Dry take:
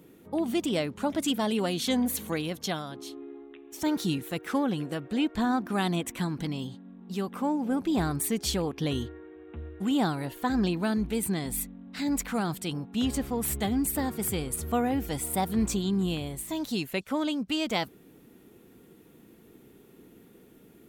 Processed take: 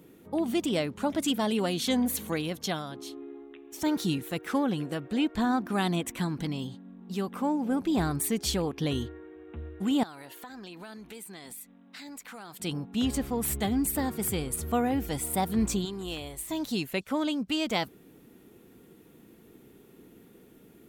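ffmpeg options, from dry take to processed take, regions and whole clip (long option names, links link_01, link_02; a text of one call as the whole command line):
ffmpeg -i in.wav -filter_complex "[0:a]asettb=1/sr,asplit=3[link_01][link_02][link_03];[link_01]atrim=end=10.034[link_04];[link_02]atrim=start=10.03:end=12.6,asetpts=PTS-STARTPTS,afade=type=in:duration=0.004:curve=qsin,afade=type=out:start_time=2.566:duration=0.004:curve=qsin,highpass=frequency=750:poles=1,acompressor=threshold=-41dB:ratio=5:attack=3.2:release=140:knee=1:detection=peak[link_05];[link_03]atrim=start=12.596[link_06];[link_04][link_05]acrossfade=duration=0.004:curve1=hsin:curve2=qsin[link_07];[link_07][link_06]acrossfade=duration=0.004:curve1=qsin:curve2=hsin,asettb=1/sr,asplit=3[link_08][link_09][link_10];[link_08]atrim=end=15.854[link_11];[link_09]atrim=start=15.85:end=16.5,asetpts=PTS-STARTPTS,afade=type=in:duration=0.004:curve=qsin,afade=type=out:start_time=0.646:duration=0.004:curve=qsin,equalizer=frequency=180:width_type=o:width=1.3:gain=-14,asoftclip=type=hard:threshold=-28dB,bandreject=frequency=1600:width=24[link_12];[link_10]atrim=start=16.496[link_13];[link_11][link_12]acrossfade=duration=0.004:curve1=hsin:curve2=qsin[link_14];[link_14][link_13]acrossfade=duration=0.004:curve1=qsin:curve2=hsin" out.wav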